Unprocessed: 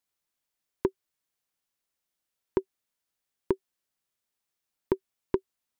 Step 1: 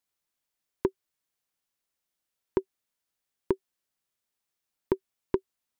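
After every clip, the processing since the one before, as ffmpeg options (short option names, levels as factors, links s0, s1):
-af anull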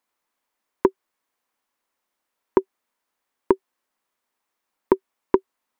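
-af "equalizer=f=125:t=o:w=1:g=-8,equalizer=f=250:t=o:w=1:g=8,equalizer=f=500:t=o:w=1:g=5,equalizer=f=1000:t=o:w=1:g=11,equalizer=f=2000:t=o:w=1:g=5,volume=1.19"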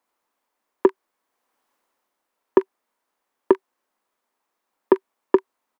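-filter_complex "[0:a]acrossover=split=220|1400[s0][s1][s2];[s1]acontrast=78[s3];[s2]aecho=1:1:25|43:0.178|0.531[s4];[s0][s3][s4]amix=inputs=3:normalize=0,dynaudnorm=f=430:g=3:m=3.76,volume=0.891"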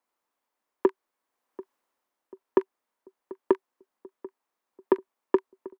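-filter_complex "[0:a]asplit=2[s0][s1];[s1]adelay=739,lowpass=f=950:p=1,volume=0.126,asplit=2[s2][s3];[s3]adelay=739,lowpass=f=950:p=1,volume=0.51,asplit=2[s4][s5];[s5]adelay=739,lowpass=f=950:p=1,volume=0.51,asplit=2[s6][s7];[s7]adelay=739,lowpass=f=950:p=1,volume=0.51[s8];[s0][s2][s4][s6][s8]amix=inputs=5:normalize=0,volume=0.501"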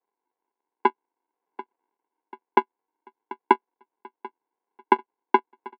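-af "aresample=16000,acrusher=samples=26:mix=1:aa=0.000001,aresample=44100,highpass=f=370:w=0.5412,highpass=f=370:w=1.3066,equalizer=f=680:t=q:w=4:g=5,equalizer=f=980:t=q:w=4:g=10,equalizer=f=1400:t=q:w=4:g=-6,lowpass=f=2300:w=0.5412,lowpass=f=2300:w=1.3066,volume=1.68"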